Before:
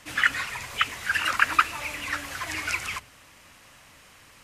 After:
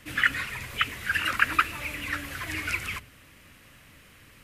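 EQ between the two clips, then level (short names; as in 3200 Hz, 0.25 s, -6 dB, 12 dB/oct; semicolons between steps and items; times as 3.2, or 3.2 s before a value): bell 850 Hz -12 dB 1.4 oct; bell 6200 Hz -11.5 dB 1.8 oct; +5.0 dB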